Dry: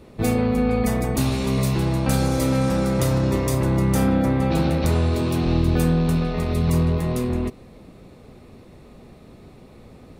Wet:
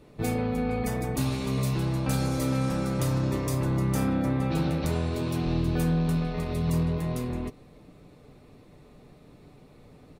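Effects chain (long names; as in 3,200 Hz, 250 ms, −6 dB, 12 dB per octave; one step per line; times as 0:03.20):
comb filter 6.8 ms, depth 36%
level −7 dB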